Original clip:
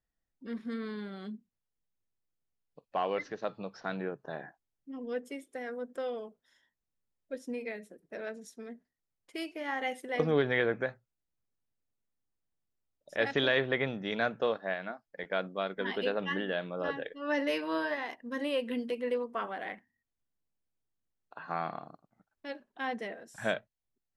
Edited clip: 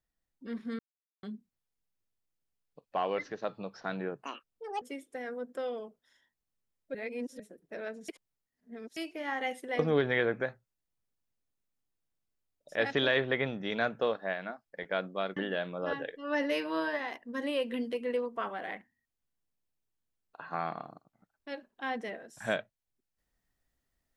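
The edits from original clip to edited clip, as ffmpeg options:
ffmpeg -i in.wav -filter_complex "[0:a]asplit=10[link_01][link_02][link_03][link_04][link_05][link_06][link_07][link_08][link_09][link_10];[link_01]atrim=end=0.79,asetpts=PTS-STARTPTS,afade=type=out:start_time=0.786:duration=0.004:curve=hsin[link_11];[link_02]atrim=start=0.79:end=1.23,asetpts=PTS-STARTPTS,volume=0[link_12];[link_03]atrim=start=1.23:end=4.224,asetpts=PTS-STARTPTS,afade=type=in:duration=0.004:curve=hsin[link_13];[link_04]atrim=start=4.22:end=5.22,asetpts=PTS-STARTPTS,asetrate=74088,aresample=44100[link_14];[link_05]atrim=start=5.216:end=7.352[link_15];[link_06]atrim=start=7.348:end=7.802,asetpts=PTS-STARTPTS,areverse[link_16];[link_07]atrim=start=7.798:end=8.492[link_17];[link_08]atrim=start=8.488:end=9.372,asetpts=PTS-STARTPTS,areverse[link_18];[link_09]atrim=start=9.368:end=15.772[link_19];[link_10]atrim=start=16.338[link_20];[link_11][link_12][link_13]concat=n=3:v=0:a=1[link_21];[link_21][link_14]acrossfade=duration=0.004:curve1=hsin:curve2=hsin[link_22];[link_22][link_15]acrossfade=duration=0.004:curve1=hsin:curve2=hsin[link_23];[link_23][link_16]acrossfade=duration=0.004:curve1=hsin:curve2=hsin[link_24];[link_24][link_17]acrossfade=duration=0.004:curve1=hsin:curve2=hsin[link_25];[link_25][link_18]acrossfade=duration=0.004:curve1=hsin:curve2=hsin[link_26];[link_26][link_19]acrossfade=duration=0.004:curve1=hsin:curve2=hsin[link_27];[link_27][link_20]acrossfade=duration=0.004:curve1=hsin:curve2=hsin" out.wav

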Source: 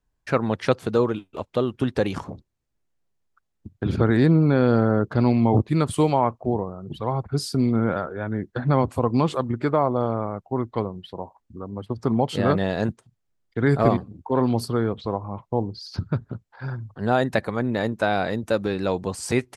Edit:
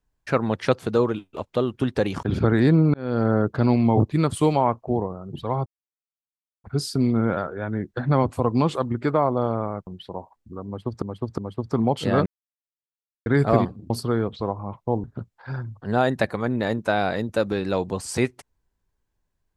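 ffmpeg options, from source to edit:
ffmpeg -i in.wav -filter_complex "[0:a]asplit=11[link_01][link_02][link_03][link_04][link_05][link_06][link_07][link_08][link_09][link_10][link_11];[link_01]atrim=end=2.232[link_12];[link_02]atrim=start=3.798:end=4.51,asetpts=PTS-STARTPTS,afade=type=out:start_time=0.708:duration=0.004:curve=hsin[link_13];[link_03]atrim=start=4.51:end=7.23,asetpts=PTS-STARTPTS,afade=type=in:duration=0.37,afade=type=out:start_time=2.716:duration=0.004:curve=hsin,apad=pad_dur=0.98[link_14];[link_04]atrim=start=7.23:end=10.462,asetpts=PTS-STARTPTS,afade=type=in:duration=0.004:curve=hsin[link_15];[link_05]atrim=start=10.908:end=12.062[link_16];[link_06]atrim=start=11.698:end=12.062[link_17];[link_07]atrim=start=11.698:end=12.58,asetpts=PTS-STARTPTS,afade=type=out:start_time=0.878:duration=0.004:curve=hsin[link_18];[link_08]atrim=start=12.58:end=13.58,asetpts=PTS-STARTPTS,volume=0[link_19];[link_09]atrim=start=13.58:end=14.222,asetpts=PTS-STARTPTS,afade=type=in:duration=0.004:curve=hsin[link_20];[link_10]atrim=start=14.548:end=15.692[link_21];[link_11]atrim=start=16.178[link_22];[link_13][link_14][link_15]concat=n=3:v=0:a=1[link_23];[link_12][link_23]acrossfade=duration=0.004:curve1=hsin:curve2=hsin[link_24];[link_24][link_16]acrossfade=duration=0.004:curve1=hsin:curve2=hsin[link_25];[link_25][link_17]acrossfade=duration=0.004:curve1=hsin:curve2=hsin[link_26];[link_18][link_19][link_20]concat=n=3:v=0:a=1[link_27];[link_26][link_27]acrossfade=duration=0.004:curve1=hsin:curve2=hsin[link_28];[link_28][link_21]acrossfade=duration=0.004:curve1=hsin:curve2=hsin[link_29];[link_29][link_22]acrossfade=duration=0.004:curve1=hsin:curve2=hsin" out.wav

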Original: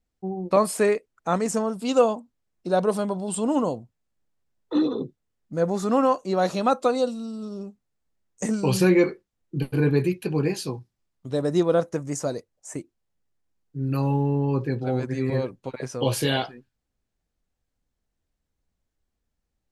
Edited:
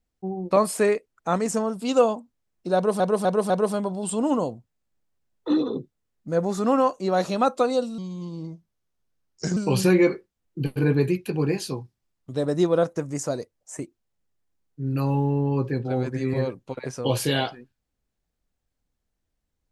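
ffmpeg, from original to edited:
ffmpeg -i in.wav -filter_complex "[0:a]asplit=6[link_01][link_02][link_03][link_04][link_05][link_06];[link_01]atrim=end=3.002[link_07];[link_02]atrim=start=2.748:end=3.002[link_08];[link_03]atrim=start=2.748:end=3.002[link_09];[link_04]atrim=start=2.748:end=7.234[link_10];[link_05]atrim=start=7.23:end=8.53,asetpts=PTS-STARTPTS,asetrate=36162,aresample=44100[link_11];[link_06]atrim=start=8.526[link_12];[link_07][link_08]acrossfade=duration=0.004:curve1=hsin:curve2=hsin[link_13];[link_13][link_09]acrossfade=duration=0.004:curve1=hsin:curve2=hsin[link_14];[link_14][link_10]acrossfade=duration=0.004:curve1=hsin:curve2=hsin[link_15];[link_15][link_11]acrossfade=duration=0.004:curve1=hsin:curve2=hsin[link_16];[link_16][link_12]acrossfade=duration=0.004:curve1=hsin:curve2=hsin" out.wav

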